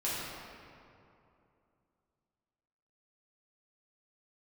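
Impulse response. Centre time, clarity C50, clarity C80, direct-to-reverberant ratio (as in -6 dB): 0.153 s, -3.0 dB, -1.0 dB, -9.0 dB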